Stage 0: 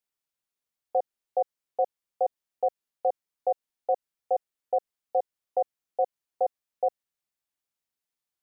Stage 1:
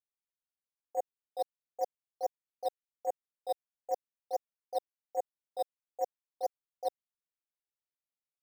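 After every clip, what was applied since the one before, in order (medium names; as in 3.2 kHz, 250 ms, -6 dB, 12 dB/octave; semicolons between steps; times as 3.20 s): gate -21 dBFS, range -17 dB; in parallel at -4 dB: decimation with a swept rate 8×, swing 60% 3.8 Hz; on the sum: trim -2.5 dB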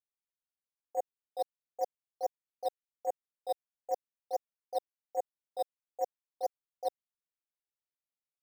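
no audible change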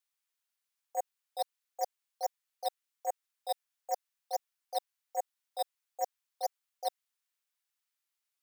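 high-pass 1.1 kHz 12 dB/octave; trim +9 dB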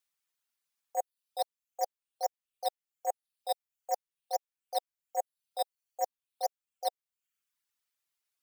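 reverb removal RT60 0.61 s; trim +2 dB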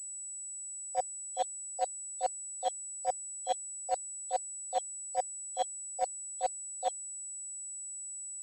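knee-point frequency compression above 2.6 kHz 1.5:1; class-D stage that switches slowly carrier 7.9 kHz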